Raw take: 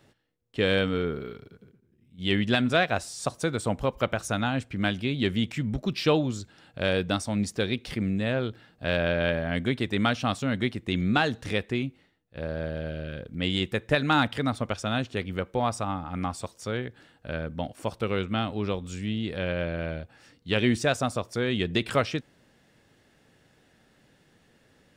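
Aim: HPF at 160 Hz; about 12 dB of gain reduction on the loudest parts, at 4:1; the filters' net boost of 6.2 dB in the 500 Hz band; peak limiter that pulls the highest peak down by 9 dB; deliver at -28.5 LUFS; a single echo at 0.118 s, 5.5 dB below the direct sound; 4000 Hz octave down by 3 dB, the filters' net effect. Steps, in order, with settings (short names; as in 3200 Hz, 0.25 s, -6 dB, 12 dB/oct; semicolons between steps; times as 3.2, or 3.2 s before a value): HPF 160 Hz; bell 500 Hz +7.5 dB; bell 4000 Hz -4 dB; compressor 4:1, threshold -28 dBFS; limiter -21.5 dBFS; echo 0.118 s -5.5 dB; gain +5 dB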